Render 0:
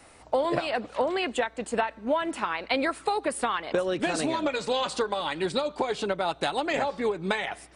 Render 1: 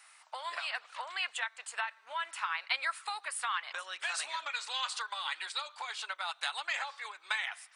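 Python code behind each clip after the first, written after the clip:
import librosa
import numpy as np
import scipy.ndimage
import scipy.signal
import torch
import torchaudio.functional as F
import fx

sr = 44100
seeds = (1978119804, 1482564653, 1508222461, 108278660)

y = scipy.signal.sosfilt(scipy.signal.butter(4, 1100.0, 'highpass', fs=sr, output='sos'), x)
y = F.gain(torch.from_numpy(y), -2.5).numpy()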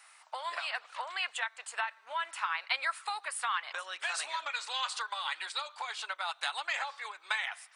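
y = fx.peak_eq(x, sr, hz=640.0, db=3.0, octaves=2.1)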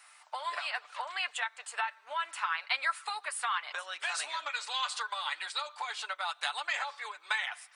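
y = x + 0.4 * np.pad(x, (int(6.8 * sr / 1000.0), 0))[:len(x)]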